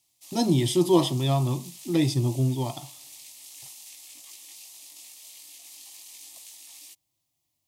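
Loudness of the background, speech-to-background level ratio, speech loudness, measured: −43.5 LKFS, 18.5 dB, −25.0 LKFS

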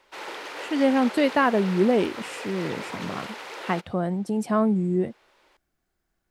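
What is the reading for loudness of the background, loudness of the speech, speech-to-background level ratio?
−36.5 LKFS, −24.5 LKFS, 12.0 dB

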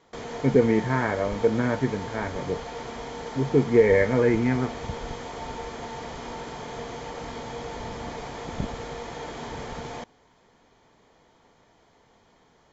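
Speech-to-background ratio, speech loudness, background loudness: 12.5 dB, −23.5 LKFS, −36.0 LKFS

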